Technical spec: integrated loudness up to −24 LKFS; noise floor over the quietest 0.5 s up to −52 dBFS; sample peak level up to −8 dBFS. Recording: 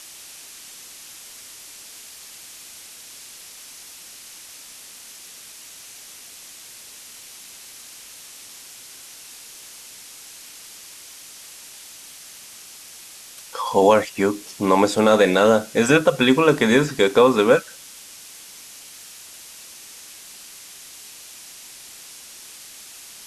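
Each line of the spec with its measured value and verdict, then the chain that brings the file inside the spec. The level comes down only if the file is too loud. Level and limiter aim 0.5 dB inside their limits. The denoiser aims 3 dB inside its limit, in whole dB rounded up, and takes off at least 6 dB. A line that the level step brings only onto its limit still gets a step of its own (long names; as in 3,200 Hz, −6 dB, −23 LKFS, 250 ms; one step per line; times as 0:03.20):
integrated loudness −17.5 LKFS: out of spec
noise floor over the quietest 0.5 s −42 dBFS: out of spec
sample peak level −3.5 dBFS: out of spec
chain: broadband denoise 6 dB, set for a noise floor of −42 dBFS
level −7 dB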